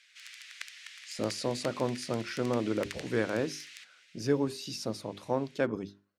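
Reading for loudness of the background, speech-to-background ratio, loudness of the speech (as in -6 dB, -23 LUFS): -45.5 LUFS, 12.5 dB, -33.0 LUFS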